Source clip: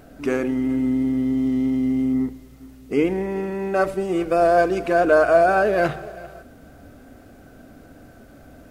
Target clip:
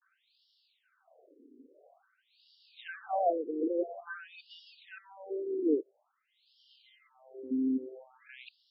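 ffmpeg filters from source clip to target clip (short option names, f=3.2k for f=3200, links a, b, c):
-af "areverse,equalizer=f=1k:t=o:w=1:g=-4,equalizer=f=2k:t=o:w=1:g=-11,equalizer=f=4k:t=o:w=1:g=9,afftfilt=real='re*between(b*sr/1024,330*pow(4000/330,0.5+0.5*sin(2*PI*0.49*pts/sr))/1.41,330*pow(4000/330,0.5+0.5*sin(2*PI*0.49*pts/sr))*1.41)':imag='im*between(b*sr/1024,330*pow(4000/330,0.5+0.5*sin(2*PI*0.49*pts/sr))/1.41,330*pow(4000/330,0.5+0.5*sin(2*PI*0.49*pts/sr))*1.41)':win_size=1024:overlap=0.75,volume=-7dB"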